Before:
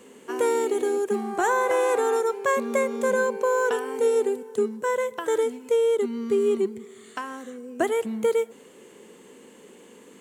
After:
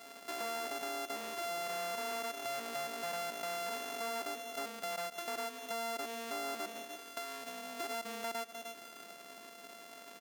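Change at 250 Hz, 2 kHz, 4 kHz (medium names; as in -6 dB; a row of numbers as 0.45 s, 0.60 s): -18.5 dB, -11.5 dB, 0.0 dB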